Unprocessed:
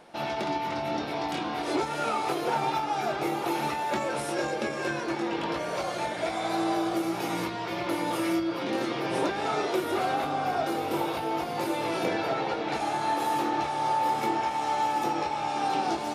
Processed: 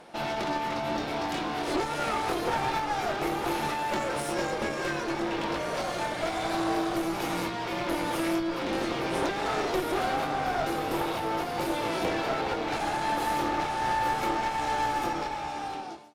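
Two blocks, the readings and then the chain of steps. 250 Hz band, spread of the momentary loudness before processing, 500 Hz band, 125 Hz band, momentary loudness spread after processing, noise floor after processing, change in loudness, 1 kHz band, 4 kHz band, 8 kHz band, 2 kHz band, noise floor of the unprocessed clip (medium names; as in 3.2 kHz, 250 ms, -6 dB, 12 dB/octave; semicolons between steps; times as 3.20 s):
-1.0 dB, 4 LU, -0.5 dB, +1.0 dB, 3 LU, -34 dBFS, -0.5 dB, -1.0 dB, +0.5 dB, +1.0 dB, +1.5 dB, -33 dBFS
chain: fade out at the end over 1.25 s; one-sided clip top -36.5 dBFS; trim +2.5 dB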